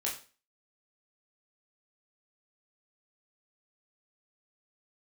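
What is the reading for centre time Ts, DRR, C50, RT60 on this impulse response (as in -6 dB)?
26 ms, -4.0 dB, 7.5 dB, 0.35 s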